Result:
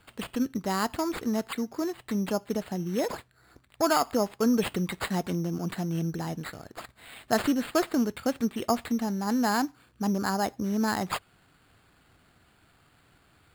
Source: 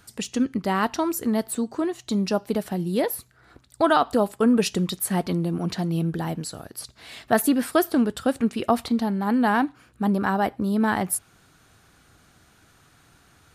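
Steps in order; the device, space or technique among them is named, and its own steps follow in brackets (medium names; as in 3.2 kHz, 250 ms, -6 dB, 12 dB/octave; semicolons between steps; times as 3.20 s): crushed at another speed (playback speed 0.5×; sample-and-hold 15×; playback speed 2×); trim -5 dB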